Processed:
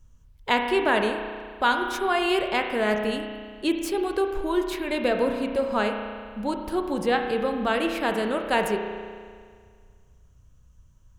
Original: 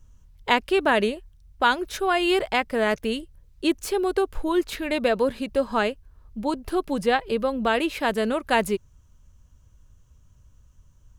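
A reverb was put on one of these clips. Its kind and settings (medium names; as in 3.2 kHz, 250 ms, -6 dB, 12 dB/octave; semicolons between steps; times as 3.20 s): spring tank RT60 1.9 s, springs 33 ms, chirp 80 ms, DRR 4 dB; trim -2.5 dB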